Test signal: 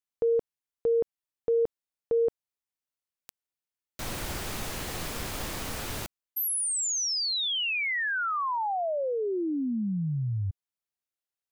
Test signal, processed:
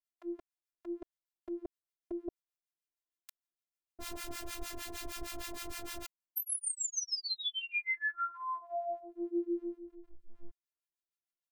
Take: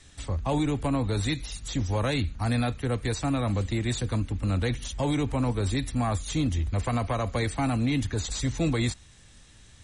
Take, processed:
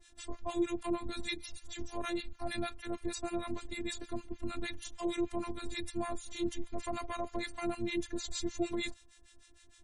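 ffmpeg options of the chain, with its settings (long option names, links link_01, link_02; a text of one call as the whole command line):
ffmpeg -i in.wav -filter_complex "[0:a]afftfilt=real='hypot(re,im)*cos(PI*b)':imag='0':win_size=512:overlap=0.75,acrossover=split=920[link_01][link_02];[link_01]aeval=exprs='val(0)*(1-1/2+1/2*cos(2*PI*6.5*n/s))':channel_layout=same[link_03];[link_02]aeval=exprs='val(0)*(1-1/2-1/2*cos(2*PI*6.5*n/s))':channel_layout=same[link_04];[link_03][link_04]amix=inputs=2:normalize=0" out.wav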